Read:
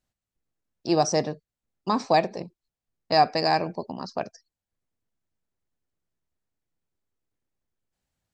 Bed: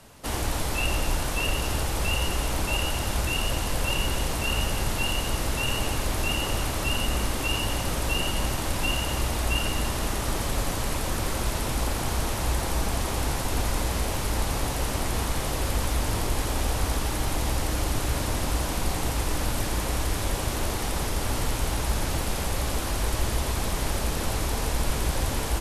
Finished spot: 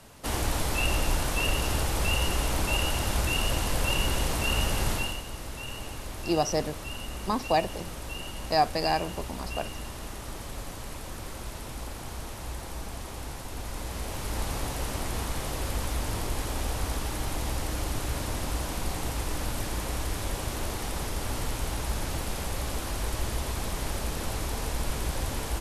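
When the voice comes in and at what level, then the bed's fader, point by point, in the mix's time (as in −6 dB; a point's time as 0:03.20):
5.40 s, −4.0 dB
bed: 0:04.93 −0.5 dB
0:05.24 −11 dB
0:13.57 −11 dB
0:14.43 −4.5 dB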